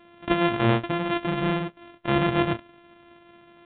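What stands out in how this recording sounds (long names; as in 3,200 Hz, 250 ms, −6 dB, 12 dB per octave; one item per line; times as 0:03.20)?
a buzz of ramps at a fixed pitch in blocks of 128 samples
mu-law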